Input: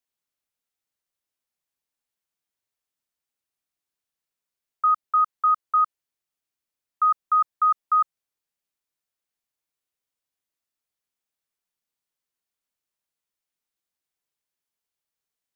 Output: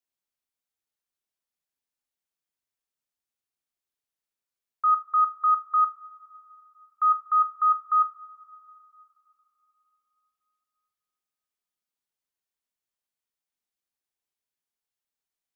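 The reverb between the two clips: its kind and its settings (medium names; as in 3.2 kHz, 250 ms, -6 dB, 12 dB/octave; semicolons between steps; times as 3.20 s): two-slope reverb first 0.29 s, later 3.4 s, from -18 dB, DRR 9 dB; trim -4.5 dB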